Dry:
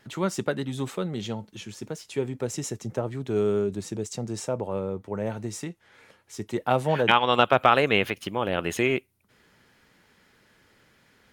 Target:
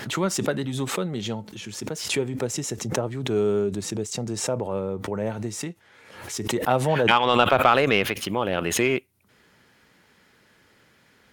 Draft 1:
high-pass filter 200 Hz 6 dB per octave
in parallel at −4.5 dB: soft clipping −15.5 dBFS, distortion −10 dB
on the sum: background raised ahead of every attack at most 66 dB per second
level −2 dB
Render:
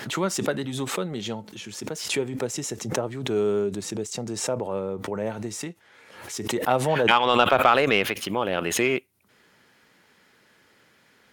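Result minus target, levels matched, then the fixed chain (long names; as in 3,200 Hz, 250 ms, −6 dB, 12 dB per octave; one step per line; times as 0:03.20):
125 Hz band −3.5 dB
high-pass filter 56 Hz 6 dB per octave
in parallel at −4.5 dB: soft clipping −15.5 dBFS, distortion −10 dB
on the sum: background raised ahead of every attack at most 66 dB per second
level −2 dB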